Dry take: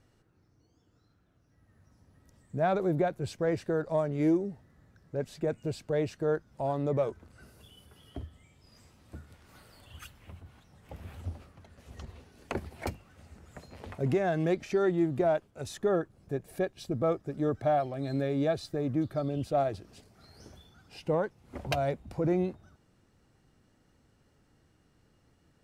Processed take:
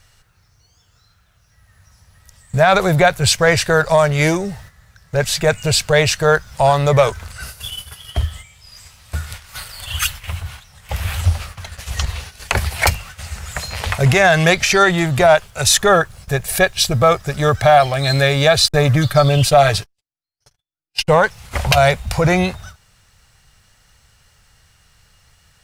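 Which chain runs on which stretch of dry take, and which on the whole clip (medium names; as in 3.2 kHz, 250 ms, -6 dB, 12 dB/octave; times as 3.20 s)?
18.68–21.09 s: gate -48 dBFS, range -58 dB + comb 6.9 ms, depth 62%
whole clip: gate -55 dBFS, range -10 dB; amplifier tone stack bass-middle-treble 10-0-10; loudness maximiser +33.5 dB; trim -1 dB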